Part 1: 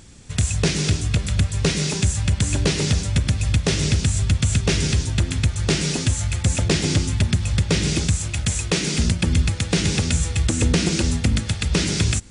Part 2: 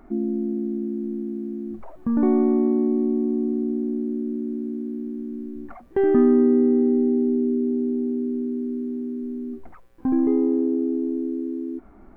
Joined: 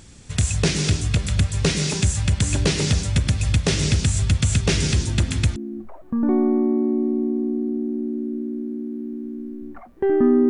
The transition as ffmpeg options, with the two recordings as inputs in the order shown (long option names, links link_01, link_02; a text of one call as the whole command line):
ffmpeg -i cue0.wav -i cue1.wav -filter_complex "[1:a]asplit=2[link_01][link_02];[0:a]apad=whole_dur=10.49,atrim=end=10.49,atrim=end=5.562[link_03];[link_02]atrim=start=1.498:end=6.43[link_04];[link_01]atrim=start=0.9:end=1.5,asetpts=PTS-STARTPTS,volume=-8.5dB,afade=type=in:duration=0.004:curve=hsin,afade=type=out:start_time=0.596:duration=0.004:curve=hsin,adelay=4960[link_05];[link_03][link_04]acrossfade=duration=0.004:curve1=hsin:curve2=hsin[link_06];[link_06][link_05]amix=inputs=2:normalize=0" out.wav